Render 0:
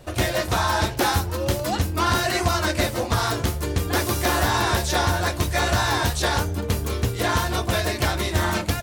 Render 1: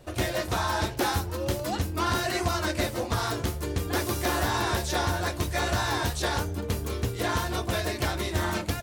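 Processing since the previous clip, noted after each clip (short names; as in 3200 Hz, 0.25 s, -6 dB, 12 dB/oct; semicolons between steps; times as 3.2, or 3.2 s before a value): bell 350 Hz +2.5 dB 1 oct; gain -6 dB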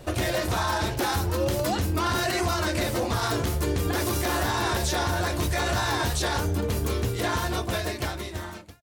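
ending faded out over 2.26 s; limiter -24.5 dBFS, peak gain reduction 9.5 dB; gain +7.5 dB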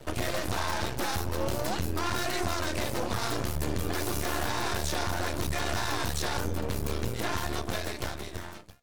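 resonator 240 Hz, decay 0.95 s, mix 40%; half-wave rectifier; gain +3.5 dB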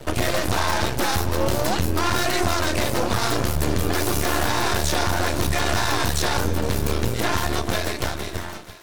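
thinning echo 0.477 s, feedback 57%, high-pass 420 Hz, level -16 dB; gain +8.5 dB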